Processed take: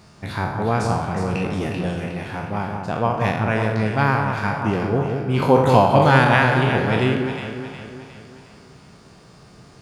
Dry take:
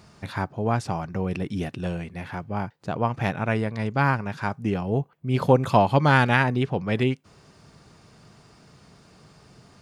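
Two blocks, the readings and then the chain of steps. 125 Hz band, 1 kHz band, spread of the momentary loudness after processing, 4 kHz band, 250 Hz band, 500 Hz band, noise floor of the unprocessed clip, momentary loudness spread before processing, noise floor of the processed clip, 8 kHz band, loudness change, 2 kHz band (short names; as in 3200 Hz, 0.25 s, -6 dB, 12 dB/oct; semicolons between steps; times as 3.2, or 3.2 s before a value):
+4.0 dB, +5.5 dB, 15 LU, +5.5 dB, +4.5 dB, +5.5 dB, -55 dBFS, 13 LU, -48 dBFS, n/a, +5.0 dB, +5.0 dB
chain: spectral trails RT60 0.73 s; on a send: echo with dull and thin repeats by turns 0.181 s, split 1400 Hz, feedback 68%, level -4 dB; on the sum: gain +1.5 dB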